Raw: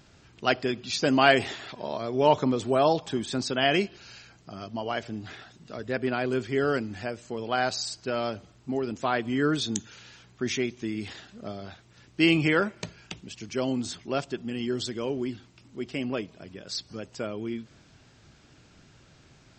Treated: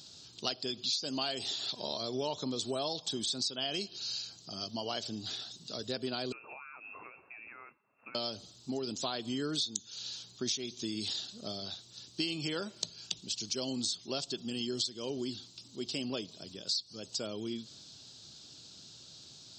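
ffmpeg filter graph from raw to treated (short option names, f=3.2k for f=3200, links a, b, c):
-filter_complex "[0:a]asettb=1/sr,asplit=3[a][b][c];[a]atrim=end=6.324[d];[b]atrim=start=6.32:end=8.15,asetpts=PTS-STARTPTS,afade=t=in:d=0.004:c=qsin,afade=t=out:st=1.826:d=0.004:c=qsin,tiltshelf=f=900:g=-10,acompressor=threshold=-36dB:ratio=20:attack=3.2:release=140:knee=1:detection=peak,lowpass=f=2.4k:t=q:w=0.5098,lowpass=f=2.4k:t=q:w=0.6013,lowpass=f=2.4k:t=q:w=0.9,lowpass=f=2.4k:t=q:w=2.563,afreqshift=-2800[e];[c]atrim=start=8.146[f];[d][e]acrossfade=d=0.004:c1=hsin:c2=qsin[g];[g][f]acrossfade=d=0.004:c1=qsin:c2=hsin,highpass=100,highshelf=f=2.9k:t=q:w=3:g=12,acompressor=threshold=-27dB:ratio=8,volume=-4.5dB"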